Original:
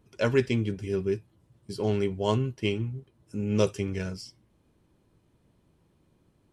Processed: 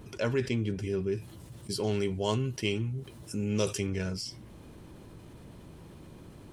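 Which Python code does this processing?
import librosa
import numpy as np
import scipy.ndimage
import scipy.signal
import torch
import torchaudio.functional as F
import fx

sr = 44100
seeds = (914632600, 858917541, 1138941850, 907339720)

y = fx.high_shelf(x, sr, hz=3000.0, db=9.0, at=(1.17, 3.87))
y = fx.env_flatten(y, sr, amount_pct=50)
y = y * librosa.db_to_amplitude(-7.0)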